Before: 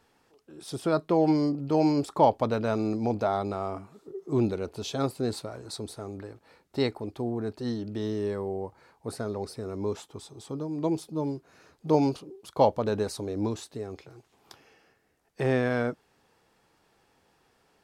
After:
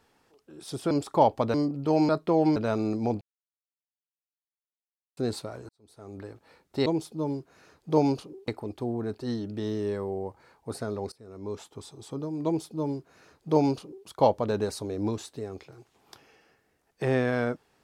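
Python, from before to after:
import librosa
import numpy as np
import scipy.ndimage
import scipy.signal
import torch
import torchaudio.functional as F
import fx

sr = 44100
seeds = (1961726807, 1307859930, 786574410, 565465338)

y = fx.edit(x, sr, fx.swap(start_s=0.91, length_s=0.47, other_s=1.93, other_length_s=0.63),
    fx.silence(start_s=3.21, length_s=1.96),
    fx.fade_in_span(start_s=5.69, length_s=0.53, curve='qua'),
    fx.fade_in_from(start_s=9.5, length_s=0.71, floor_db=-22.0),
    fx.duplicate(start_s=10.83, length_s=1.62, to_s=6.86), tone=tone)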